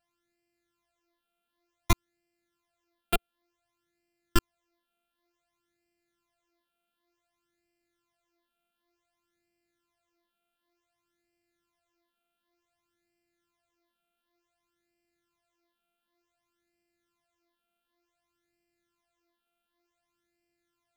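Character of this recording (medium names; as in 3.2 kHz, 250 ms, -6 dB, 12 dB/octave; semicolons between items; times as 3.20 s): a buzz of ramps at a fixed pitch in blocks of 128 samples; phasing stages 12, 0.55 Hz, lowest notch 100–1200 Hz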